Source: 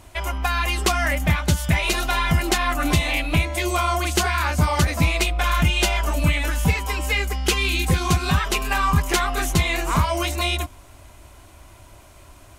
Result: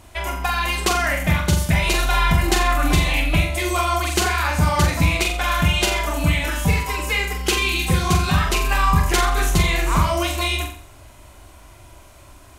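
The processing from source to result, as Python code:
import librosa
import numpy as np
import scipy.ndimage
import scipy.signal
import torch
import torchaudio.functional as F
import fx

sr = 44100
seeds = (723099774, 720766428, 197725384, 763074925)

y = fx.room_flutter(x, sr, wall_m=7.5, rt60_s=0.5)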